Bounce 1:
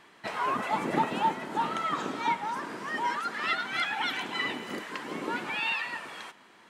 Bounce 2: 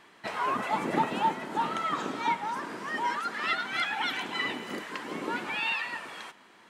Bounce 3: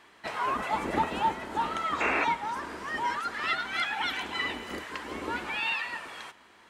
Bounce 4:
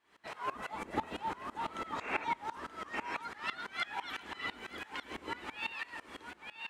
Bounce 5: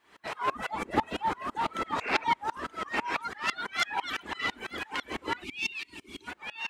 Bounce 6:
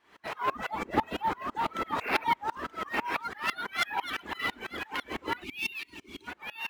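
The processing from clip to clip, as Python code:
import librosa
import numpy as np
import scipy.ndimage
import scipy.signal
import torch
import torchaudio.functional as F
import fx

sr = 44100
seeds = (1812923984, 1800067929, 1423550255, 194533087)

y1 = fx.hum_notches(x, sr, base_hz=50, count=3)
y2 = fx.octave_divider(y1, sr, octaves=2, level_db=-3.0)
y2 = fx.low_shelf(y2, sr, hz=150.0, db=-10.0)
y2 = fx.spec_paint(y2, sr, seeds[0], shape='noise', start_s=2.0, length_s=0.25, low_hz=260.0, high_hz=2800.0, level_db=-27.0)
y3 = y2 + 10.0 ** (-6.5 / 20.0) * np.pad(y2, (int(930 * sr / 1000.0), 0))[:len(y2)]
y3 = fx.tremolo_decay(y3, sr, direction='swelling', hz=6.0, depth_db=21)
y3 = F.gain(torch.from_numpy(y3), -3.0).numpy()
y4 = fx.self_delay(y3, sr, depth_ms=0.1)
y4 = fx.spec_box(y4, sr, start_s=5.44, length_s=0.83, low_hz=420.0, high_hz=2100.0, gain_db=-16)
y4 = fx.dereverb_blind(y4, sr, rt60_s=0.68)
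y4 = F.gain(torch.from_numpy(y4), 8.5).numpy()
y5 = np.interp(np.arange(len(y4)), np.arange(len(y4))[::3], y4[::3])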